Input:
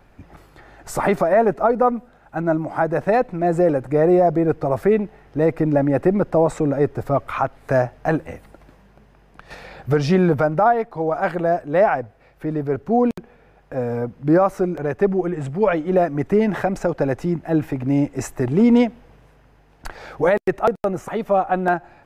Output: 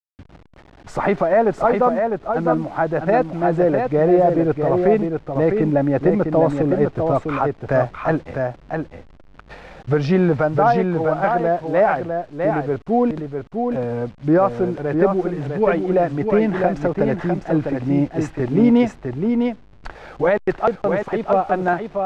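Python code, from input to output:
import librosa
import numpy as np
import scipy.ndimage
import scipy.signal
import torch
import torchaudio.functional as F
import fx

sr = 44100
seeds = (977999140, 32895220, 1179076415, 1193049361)

y = fx.delta_hold(x, sr, step_db=-39.5)
y = scipy.signal.sosfilt(scipy.signal.butter(2, 4100.0, 'lowpass', fs=sr, output='sos'), y)
y = y + 10.0 ** (-5.0 / 20.0) * np.pad(y, (int(653 * sr / 1000.0), 0))[:len(y)]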